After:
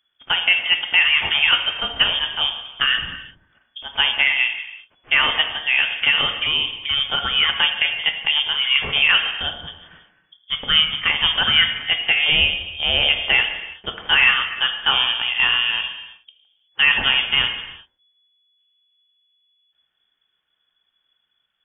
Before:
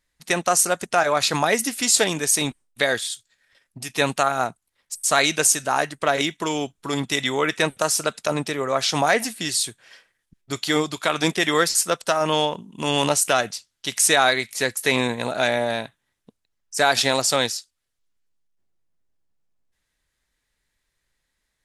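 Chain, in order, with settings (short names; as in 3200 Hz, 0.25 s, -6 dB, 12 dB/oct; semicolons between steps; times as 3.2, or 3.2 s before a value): high shelf 2100 Hz -7 dB; non-linear reverb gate 0.4 s falling, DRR 5 dB; inverted band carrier 3400 Hz; gain +3.5 dB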